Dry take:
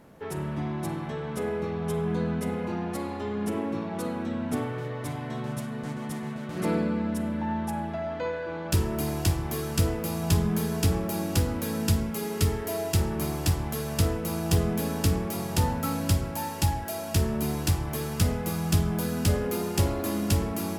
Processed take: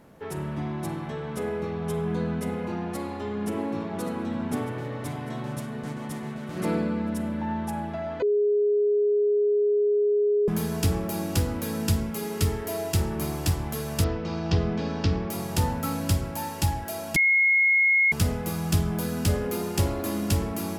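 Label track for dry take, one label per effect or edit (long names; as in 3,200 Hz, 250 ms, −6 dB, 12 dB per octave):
2.980000	3.980000	delay throw 600 ms, feedback 70%, level −9.5 dB
8.220000	10.480000	beep over 414 Hz −19 dBFS
14.040000	15.300000	Butterworth low-pass 5,400 Hz
17.160000	18.120000	beep over 2,160 Hz −17 dBFS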